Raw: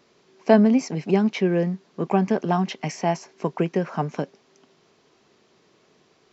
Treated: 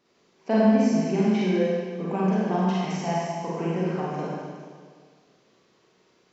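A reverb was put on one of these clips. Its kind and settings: Schroeder reverb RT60 1.8 s, combs from 33 ms, DRR -7.5 dB; gain -10.5 dB

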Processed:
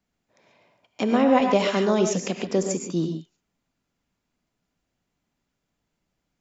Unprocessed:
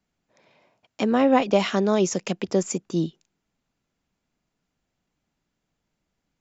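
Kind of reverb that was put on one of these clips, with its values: non-linear reverb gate 0.16 s rising, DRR 4.5 dB; gain -1 dB

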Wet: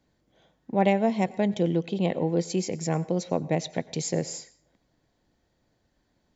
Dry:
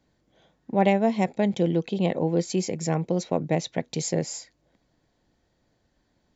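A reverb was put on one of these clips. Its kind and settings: plate-style reverb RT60 0.51 s, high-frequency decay 0.85×, pre-delay 80 ms, DRR 19.5 dB; gain -1.5 dB

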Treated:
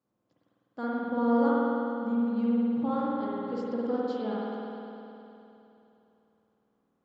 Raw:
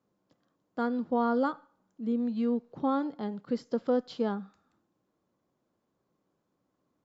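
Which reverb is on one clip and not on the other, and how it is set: spring tank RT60 3.1 s, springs 51 ms, chirp 60 ms, DRR -6.5 dB; gain -6.5 dB

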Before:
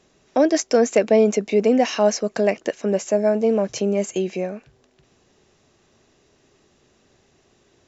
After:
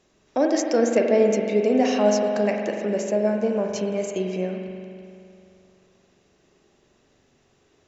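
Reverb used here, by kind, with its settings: spring tank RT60 2.6 s, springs 43 ms, chirp 70 ms, DRR 1.5 dB; gain -4.5 dB

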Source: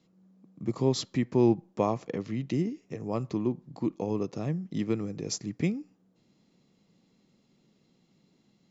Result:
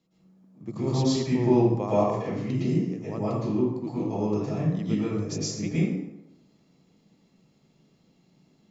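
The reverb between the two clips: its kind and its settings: plate-style reverb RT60 0.89 s, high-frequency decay 0.65×, pre-delay 0.1 s, DRR -9.5 dB; gain -6 dB

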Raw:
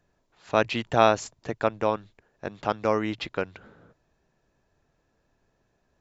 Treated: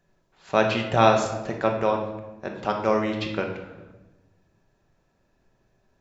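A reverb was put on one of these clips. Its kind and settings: shoebox room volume 510 m³, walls mixed, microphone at 1.1 m

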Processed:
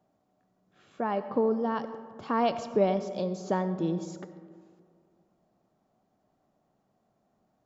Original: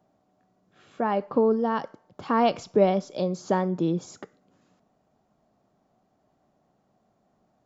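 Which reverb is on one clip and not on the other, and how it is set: digital reverb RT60 2.1 s, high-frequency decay 0.35×, pre-delay 50 ms, DRR 12 dB; gain -4.5 dB

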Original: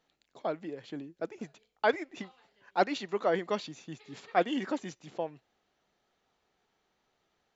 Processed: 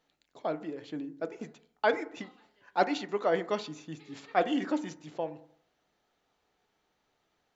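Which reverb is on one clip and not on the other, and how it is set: FDN reverb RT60 0.61 s, low-frequency decay 0.95×, high-frequency decay 0.25×, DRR 10.5 dB

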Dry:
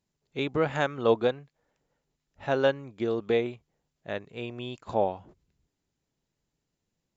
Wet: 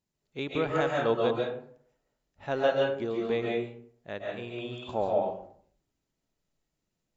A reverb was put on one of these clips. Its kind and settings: digital reverb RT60 0.57 s, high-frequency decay 0.55×, pre-delay 0.1 s, DRR -2 dB; gain -4.5 dB

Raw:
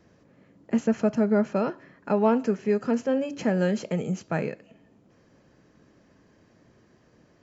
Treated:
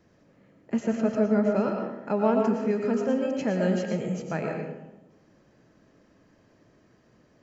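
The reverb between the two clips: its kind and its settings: digital reverb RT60 1 s, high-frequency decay 0.45×, pre-delay 70 ms, DRR 2 dB; gain -3 dB

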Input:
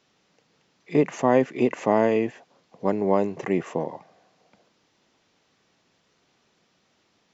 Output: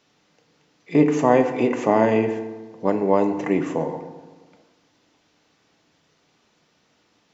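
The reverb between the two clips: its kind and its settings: FDN reverb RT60 1.3 s, low-frequency decay 1.2×, high-frequency decay 0.6×, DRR 6 dB; gain +2 dB

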